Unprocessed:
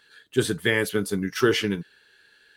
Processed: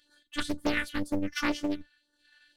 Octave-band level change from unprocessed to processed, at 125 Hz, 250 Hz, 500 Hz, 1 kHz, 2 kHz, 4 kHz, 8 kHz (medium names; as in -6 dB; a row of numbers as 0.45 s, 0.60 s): -13.0 dB, -4.5 dB, -13.0 dB, -2.0 dB, -7.0 dB, -8.0 dB, -10.5 dB